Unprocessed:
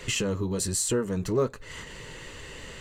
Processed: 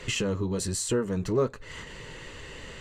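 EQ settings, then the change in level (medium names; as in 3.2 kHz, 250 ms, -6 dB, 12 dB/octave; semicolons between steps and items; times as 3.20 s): treble shelf 9.7 kHz -11.5 dB; 0.0 dB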